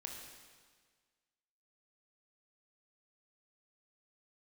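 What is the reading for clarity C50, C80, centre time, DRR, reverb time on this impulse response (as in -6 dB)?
2.5 dB, 4.0 dB, 65 ms, 0.5 dB, 1.6 s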